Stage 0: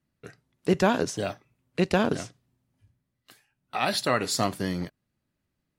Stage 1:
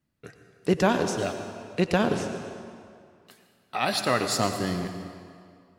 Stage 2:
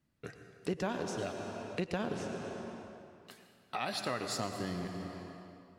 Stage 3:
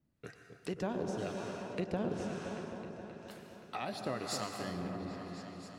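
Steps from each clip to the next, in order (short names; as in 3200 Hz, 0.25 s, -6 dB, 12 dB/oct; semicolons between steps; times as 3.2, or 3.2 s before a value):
reverb RT60 2.3 s, pre-delay 87 ms, DRR 7 dB
high shelf 11000 Hz -6.5 dB; compressor 2.5:1, threshold -38 dBFS, peak gain reduction 14 dB
harmonic tremolo 1 Hz, depth 70%, crossover 810 Hz; repeats that get brighter 0.263 s, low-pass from 750 Hz, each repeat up 1 oct, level -6 dB; gain +1 dB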